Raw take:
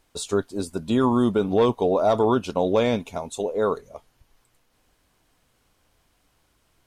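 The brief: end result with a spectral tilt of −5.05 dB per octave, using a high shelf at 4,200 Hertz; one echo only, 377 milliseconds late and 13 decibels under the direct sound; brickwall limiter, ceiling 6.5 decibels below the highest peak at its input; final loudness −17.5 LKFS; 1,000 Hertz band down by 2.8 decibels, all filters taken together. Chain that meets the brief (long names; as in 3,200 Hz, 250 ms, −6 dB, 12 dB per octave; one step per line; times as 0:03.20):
parametric band 1,000 Hz −4 dB
high-shelf EQ 4,200 Hz +6 dB
brickwall limiter −16.5 dBFS
single-tap delay 377 ms −13 dB
level +9.5 dB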